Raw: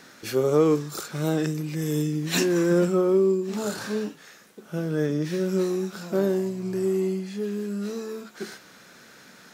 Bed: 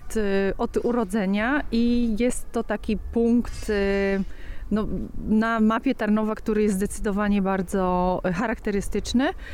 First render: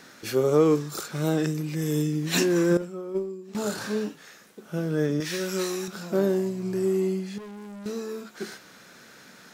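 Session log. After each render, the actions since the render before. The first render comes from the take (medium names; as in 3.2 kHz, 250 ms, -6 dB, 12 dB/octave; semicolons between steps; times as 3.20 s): 2.77–3.55 s: gate -18 dBFS, range -14 dB; 5.20–5.88 s: tilt shelf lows -8.5 dB, about 690 Hz; 7.38–7.86 s: valve stage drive 39 dB, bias 0.25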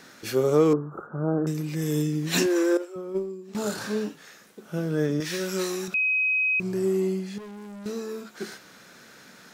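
0.73–1.47 s: elliptic low-pass 1.4 kHz; 2.46–2.96 s: brick-wall FIR high-pass 280 Hz; 5.94–6.60 s: bleep 2.53 kHz -20.5 dBFS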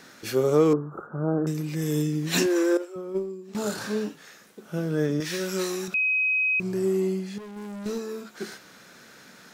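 7.56–7.98 s: waveshaping leveller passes 1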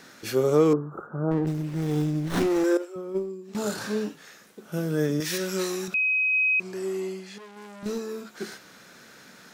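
1.31–2.64 s: sliding maximum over 17 samples; 4.72–5.38 s: treble shelf 7.6 kHz +10.5 dB; 6.33–7.83 s: frequency weighting A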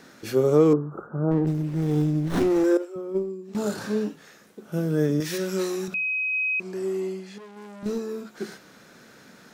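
tilt shelf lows +3.5 dB, about 820 Hz; hum notches 60/120/180 Hz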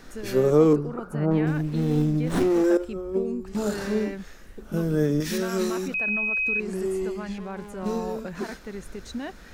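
add bed -12 dB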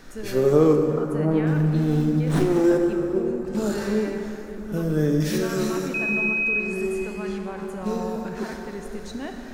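plate-style reverb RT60 3.7 s, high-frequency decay 0.55×, DRR 3.5 dB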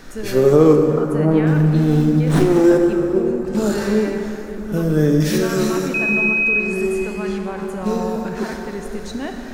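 trim +6 dB; peak limiter -1 dBFS, peak gain reduction 2 dB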